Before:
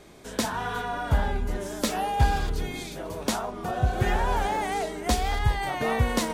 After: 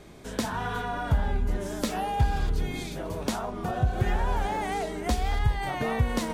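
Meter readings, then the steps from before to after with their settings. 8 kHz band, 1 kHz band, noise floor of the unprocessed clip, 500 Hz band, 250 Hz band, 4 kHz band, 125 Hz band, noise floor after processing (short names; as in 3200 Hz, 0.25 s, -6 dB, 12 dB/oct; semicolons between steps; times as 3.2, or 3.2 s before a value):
-5.5 dB, -3.0 dB, -39 dBFS, -2.5 dB, -0.5 dB, -4.0 dB, 0.0 dB, -37 dBFS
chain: compressor 2:1, threshold -28 dBFS, peak gain reduction 7.5 dB; tone controls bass +5 dB, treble -2 dB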